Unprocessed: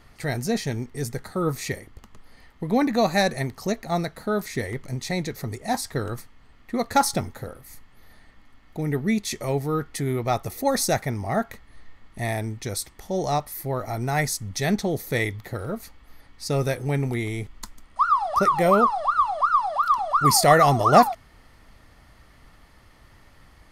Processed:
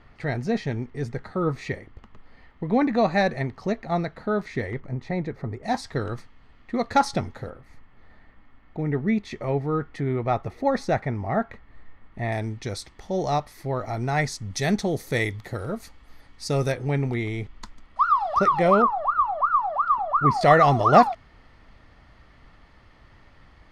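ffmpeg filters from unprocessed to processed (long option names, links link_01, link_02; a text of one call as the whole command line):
ffmpeg -i in.wav -af "asetnsamples=nb_out_samples=441:pad=0,asendcmd='4.8 lowpass f 1600;5.63 lowpass f 4300;7.5 lowpass f 2300;12.32 lowpass f 4900;14.5 lowpass f 8900;16.72 lowpass f 4200;18.82 lowpass f 1600;20.41 lowpass f 4100',lowpass=2900" out.wav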